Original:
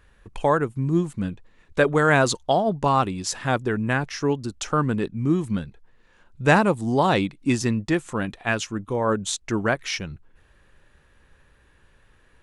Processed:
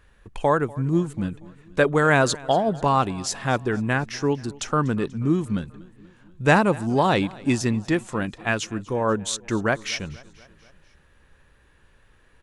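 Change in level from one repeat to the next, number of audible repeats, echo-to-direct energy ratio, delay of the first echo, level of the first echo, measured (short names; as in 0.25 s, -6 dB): -4.5 dB, 3, -20.0 dB, 0.242 s, -22.0 dB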